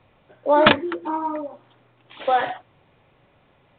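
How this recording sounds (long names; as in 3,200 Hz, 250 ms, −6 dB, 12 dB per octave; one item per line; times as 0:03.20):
mu-law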